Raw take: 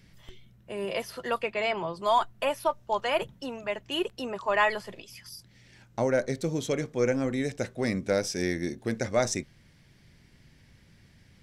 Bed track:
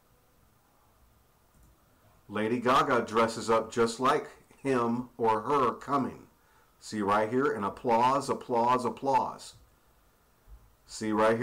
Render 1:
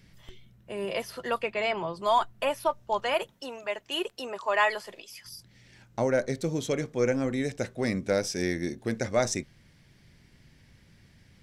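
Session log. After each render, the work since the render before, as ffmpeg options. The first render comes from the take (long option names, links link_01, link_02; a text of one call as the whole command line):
ffmpeg -i in.wav -filter_complex "[0:a]asettb=1/sr,asplit=3[link_01][link_02][link_03];[link_01]atrim=end=3.144[link_04];[link_02]atrim=start=3.14:end=5.25,asetpts=PTS-STARTPTS,afade=type=in:duration=0.004:curve=qsin,afade=type=out:start_time=2.106:duration=0.004:curve=qsin,bass=frequency=250:gain=-14,treble=frequency=4000:gain=3[link_05];[link_03]atrim=start=5.246[link_06];[link_04][link_05]acrossfade=duration=0.004:curve1=hsin:curve2=qsin[link_07];[link_07][link_06]acrossfade=duration=0.004:curve1=qsin:curve2=hsin" out.wav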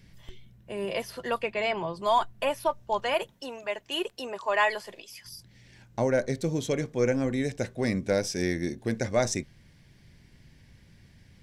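ffmpeg -i in.wav -af "lowshelf=frequency=150:gain=4,bandreject=frequency=1300:width=11" out.wav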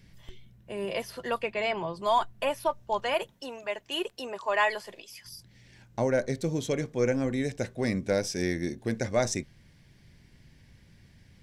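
ffmpeg -i in.wav -af "volume=-1dB" out.wav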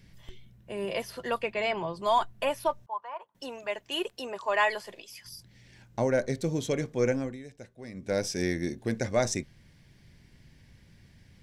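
ffmpeg -i in.wav -filter_complex "[0:a]asettb=1/sr,asplit=3[link_01][link_02][link_03];[link_01]atrim=end=2.864[link_04];[link_02]atrim=start=2.86:end=3.35,asetpts=PTS-STARTPTS,afade=type=in:duration=0.004:curve=qsin,afade=type=out:start_time=0.486:duration=0.004:curve=qsin,bandpass=frequency=1000:width_type=q:width=5.6[link_05];[link_03]atrim=start=3.346[link_06];[link_04][link_05]acrossfade=duration=0.004:curve1=hsin:curve2=qsin[link_07];[link_07][link_06]acrossfade=duration=0.004:curve1=qsin:curve2=hsin,asplit=3[link_08][link_09][link_10];[link_08]atrim=end=7.39,asetpts=PTS-STARTPTS,afade=type=out:start_time=7.1:duration=0.29:silence=0.177828[link_11];[link_09]atrim=start=7.39:end=7.93,asetpts=PTS-STARTPTS,volume=-15dB[link_12];[link_10]atrim=start=7.93,asetpts=PTS-STARTPTS,afade=type=in:duration=0.29:silence=0.177828[link_13];[link_11][link_12][link_13]concat=n=3:v=0:a=1" out.wav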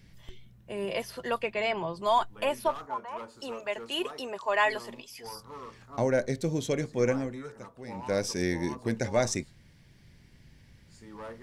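ffmpeg -i in.wav -i bed.wav -filter_complex "[1:a]volume=-18dB[link_01];[0:a][link_01]amix=inputs=2:normalize=0" out.wav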